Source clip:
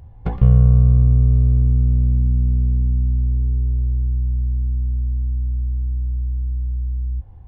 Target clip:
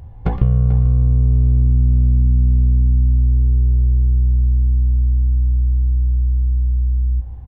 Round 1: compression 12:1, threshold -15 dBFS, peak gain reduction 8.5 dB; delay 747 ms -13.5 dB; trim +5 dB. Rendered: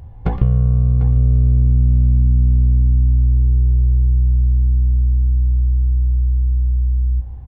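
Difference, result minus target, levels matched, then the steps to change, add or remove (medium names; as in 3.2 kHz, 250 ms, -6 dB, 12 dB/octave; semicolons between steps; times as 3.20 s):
echo 307 ms late
change: delay 440 ms -13.5 dB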